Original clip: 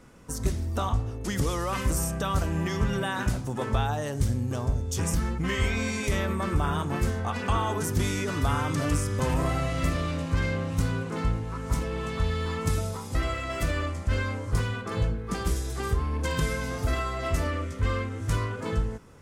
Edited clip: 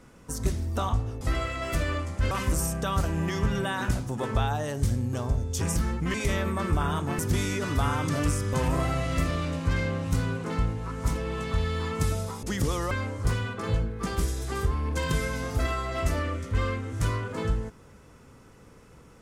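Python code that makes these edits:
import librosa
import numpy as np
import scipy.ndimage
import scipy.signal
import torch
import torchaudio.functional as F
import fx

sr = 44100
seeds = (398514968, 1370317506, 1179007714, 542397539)

y = fx.edit(x, sr, fx.swap(start_s=1.21, length_s=0.48, other_s=13.09, other_length_s=1.1),
    fx.cut(start_s=5.52, length_s=0.45),
    fx.cut(start_s=7.02, length_s=0.83), tone=tone)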